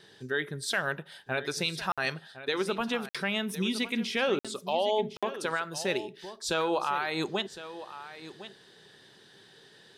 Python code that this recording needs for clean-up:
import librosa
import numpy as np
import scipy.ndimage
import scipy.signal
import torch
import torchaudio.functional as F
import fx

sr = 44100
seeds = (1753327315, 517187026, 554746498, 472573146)

y = fx.fix_interpolate(x, sr, at_s=(1.92, 3.09, 4.39, 5.17), length_ms=56.0)
y = fx.fix_echo_inverse(y, sr, delay_ms=1059, level_db=-14.0)